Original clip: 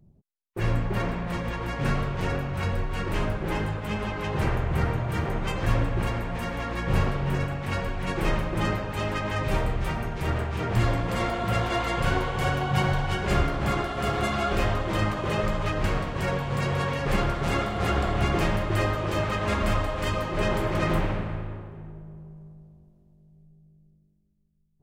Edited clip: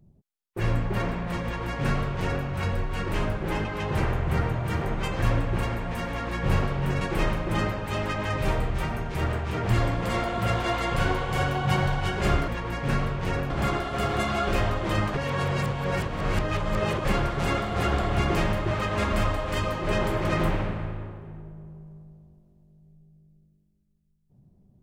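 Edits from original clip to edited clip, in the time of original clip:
0:01.44–0:02.46: duplicate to 0:13.54
0:03.65–0:04.09: remove
0:07.45–0:08.07: remove
0:15.18–0:17.09: reverse
0:18.75–0:19.21: remove

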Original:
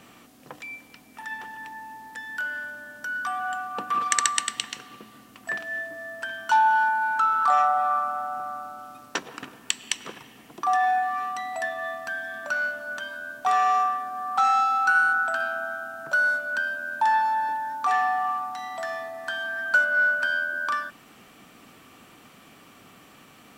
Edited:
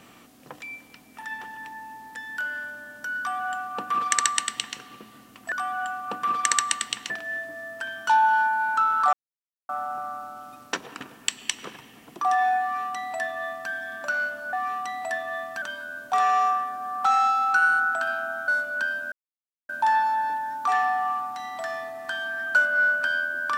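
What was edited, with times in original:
0:03.19–0:04.77: duplicate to 0:05.52
0:07.55–0:08.11: silence
0:11.04–0:12.13: duplicate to 0:12.95
0:15.81–0:16.24: remove
0:16.88: splice in silence 0.57 s

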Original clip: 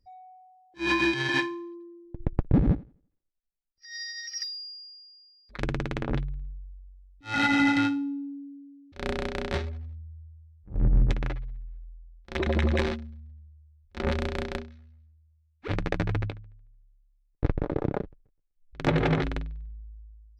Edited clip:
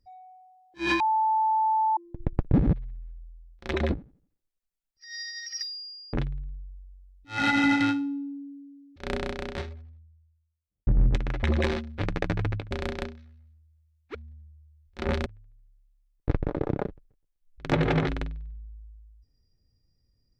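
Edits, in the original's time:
0:01.00–0:01.97: beep over 877 Hz −20.5 dBFS
0:04.94–0:06.09: remove
0:09.15–0:10.83: fade out quadratic
0:11.39–0:12.58: move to 0:02.73
0:13.13–0:14.24: swap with 0:15.68–0:16.41

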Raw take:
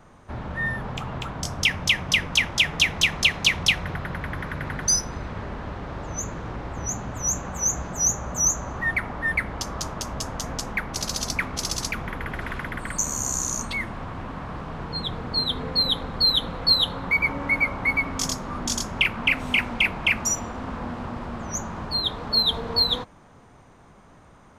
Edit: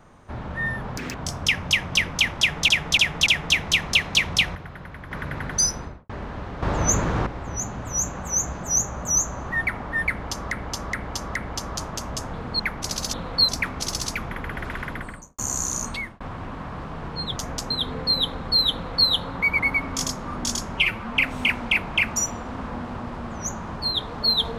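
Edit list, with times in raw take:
0:00.97–0:01.31: play speed 195%
0:02.56–0:02.85: repeat, 4 plays
0:03.85–0:04.41: clip gain −8 dB
0:05.05–0:05.39: fade out and dull
0:05.92–0:06.56: clip gain +10 dB
0:09.39–0:09.81: repeat, 4 plays
0:10.37–0:10.71: swap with 0:15.13–0:15.39
0:12.69–0:13.15: fade out and dull
0:13.70–0:13.97: fade out
0:16.42–0:16.77: duplicate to 0:11.25
0:17.28–0:17.82: remove
0:18.97–0:19.24: time-stretch 1.5×

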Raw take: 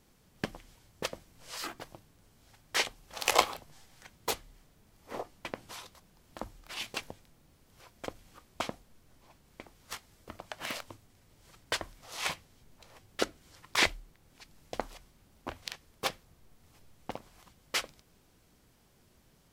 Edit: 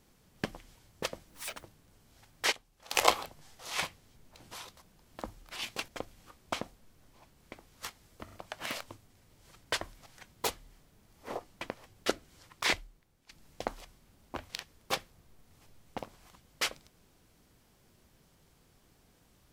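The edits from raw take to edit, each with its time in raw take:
0:01.30–0:01.95: play speed 190%
0:02.83–0:03.22: clip gain −11 dB
0:03.90–0:05.58: swap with 0:12.06–0:12.87
0:07.06–0:07.96: remove
0:10.32: stutter 0.04 s, 3 plays
0:13.41–0:14.42: fade out, to −12 dB

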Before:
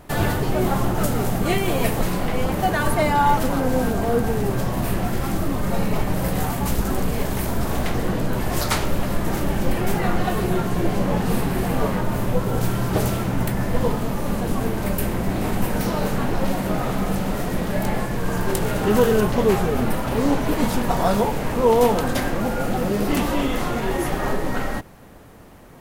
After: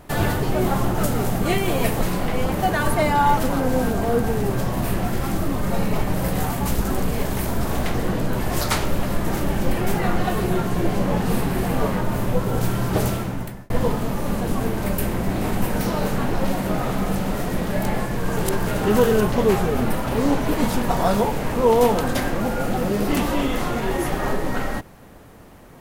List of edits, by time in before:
0:13.08–0:13.70: fade out
0:18.37–0:18.67: reverse

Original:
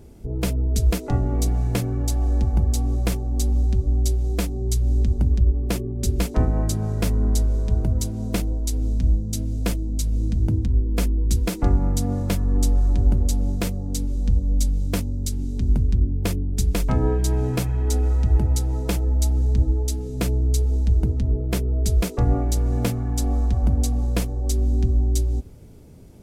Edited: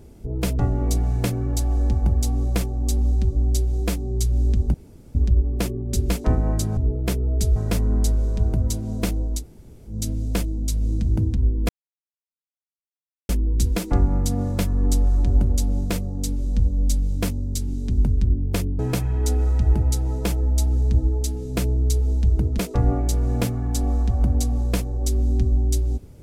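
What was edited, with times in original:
0:00.59–0:01.10: remove
0:05.25: splice in room tone 0.41 s
0:08.71–0:09.22: fill with room tone, crossfade 0.10 s
0:11.00: splice in silence 1.60 s
0:16.50–0:17.43: remove
0:21.22–0:22.01: move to 0:06.87

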